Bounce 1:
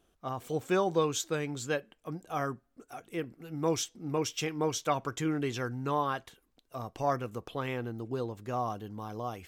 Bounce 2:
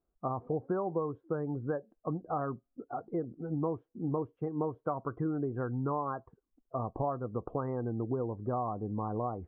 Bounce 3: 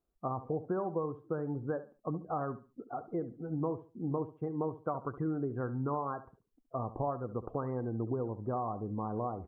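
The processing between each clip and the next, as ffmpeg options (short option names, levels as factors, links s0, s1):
-af "acompressor=threshold=0.0126:ratio=6,lowpass=f=1300:w=0.5412,lowpass=f=1300:w=1.3066,afftdn=nr=22:nf=-52,volume=2.51"
-af "aecho=1:1:70|140|210:0.2|0.0519|0.0135,volume=0.841"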